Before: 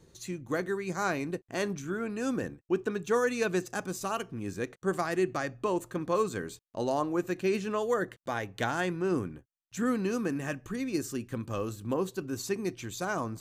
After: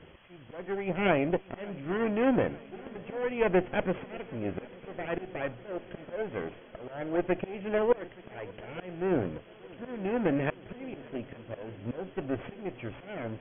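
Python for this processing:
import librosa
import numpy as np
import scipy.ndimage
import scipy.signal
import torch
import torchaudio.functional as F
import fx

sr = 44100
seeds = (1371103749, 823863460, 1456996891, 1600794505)

p1 = fx.lower_of_two(x, sr, delay_ms=0.46)
p2 = fx.peak_eq(p1, sr, hz=580.0, db=9.0, octaves=0.82)
p3 = fx.auto_swell(p2, sr, attack_ms=544.0)
p4 = fx.quant_dither(p3, sr, seeds[0], bits=8, dither='triangular')
p5 = p3 + (p4 * 10.0 ** (-4.0 / 20.0))
p6 = fx.brickwall_lowpass(p5, sr, high_hz=3400.0)
y = p6 + fx.echo_heads(p6, sr, ms=291, heads='second and third', feedback_pct=75, wet_db=-23.5, dry=0)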